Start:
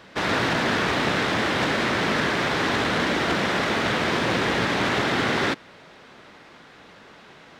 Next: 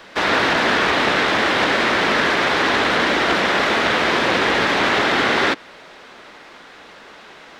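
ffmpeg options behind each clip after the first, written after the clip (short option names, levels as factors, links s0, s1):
-filter_complex "[0:a]acrossover=split=370|800|5300[s0][s1][s2][s3];[s3]alimiter=level_in=6.31:limit=0.0631:level=0:latency=1:release=87,volume=0.158[s4];[s0][s1][s2][s4]amix=inputs=4:normalize=0,equalizer=f=120:w=0.7:g=-11.5,volume=2.24"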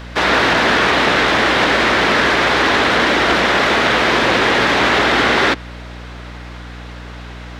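-filter_complex "[0:a]asplit=2[s0][s1];[s1]asoftclip=type=tanh:threshold=0.133,volume=0.422[s2];[s0][s2]amix=inputs=2:normalize=0,aeval=exprs='val(0)+0.0224*(sin(2*PI*60*n/s)+sin(2*PI*2*60*n/s)/2+sin(2*PI*3*60*n/s)/3+sin(2*PI*4*60*n/s)/4+sin(2*PI*5*60*n/s)/5)':c=same,volume=1.19"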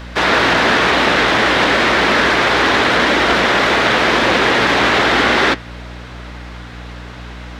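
-af "flanger=delay=3.3:depth=8:regen=-74:speed=0.94:shape=sinusoidal,volume=1.78"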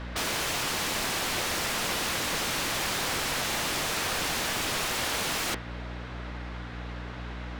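-af "aeval=exprs='(mod(5.62*val(0)+1,2)-1)/5.62':c=same,aemphasis=mode=reproduction:type=cd,volume=0.473"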